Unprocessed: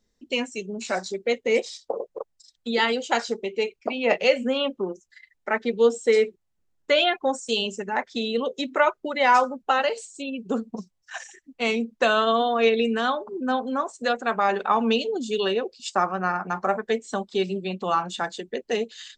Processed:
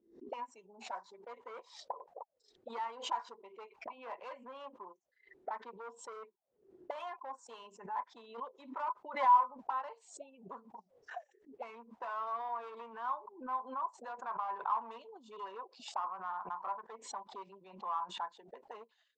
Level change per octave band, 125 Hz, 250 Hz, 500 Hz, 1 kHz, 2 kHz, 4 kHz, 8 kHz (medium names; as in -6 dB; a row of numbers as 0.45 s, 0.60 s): no reading, -27.5 dB, -24.5 dB, -9.5 dB, -23.5 dB, -23.5 dB, under -15 dB